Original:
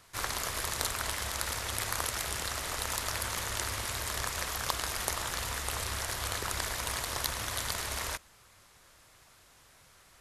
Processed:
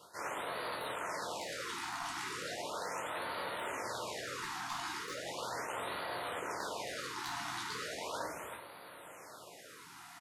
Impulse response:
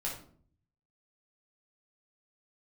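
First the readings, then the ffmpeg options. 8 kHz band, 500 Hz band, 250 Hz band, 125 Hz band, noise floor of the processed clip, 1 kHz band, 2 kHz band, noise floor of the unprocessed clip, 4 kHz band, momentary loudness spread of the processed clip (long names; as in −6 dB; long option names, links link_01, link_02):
−12.5 dB, +1.0 dB, −1.5 dB, −14.5 dB, −53 dBFS, −1.5 dB, −4.5 dB, −60 dBFS, −8.0 dB, 12 LU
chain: -filter_complex "[0:a]highpass=210,asplit=2[link_01][link_02];[link_02]aecho=0:1:385:0.112[link_03];[link_01][link_03]amix=inputs=2:normalize=0,acrossover=split=7900[link_04][link_05];[link_05]acompressor=threshold=-51dB:ratio=4:attack=1:release=60[link_06];[link_04][link_06]amix=inputs=2:normalize=0,aeval=exprs='0.119*(abs(mod(val(0)/0.119+3,4)-2)-1)':channel_layout=same,equalizer=frequency=510:width=0.43:gain=8.5[link_07];[1:a]atrim=start_sample=2205[link_08];[link_07][link_08]afir=irnorm=-1:irlink=0,areverse,acompressor=threshold=-39dB:ratio=12,areverse,afftfilt=real='re*(1-between(b*sr/1024,470*pow(6800/470,0.5+0.5*sin(2*PI*0.37*pts/sr))/1.41,470*pow(6800/470,0.5+0.5*sin(2*PI*0.37*pts/sr))*1.41))':imag='im*(1-between(b*sr/1024,470*pow(6800/470,0.5+0.5*sin(2*PI*0.37*pts/sr))/1.41,470*pow(6800/470,0.5+0.5*sin(2*PI*0.37*pts/sr))*1.41))':win_size=1024:overlap=0.75,volume=3dB"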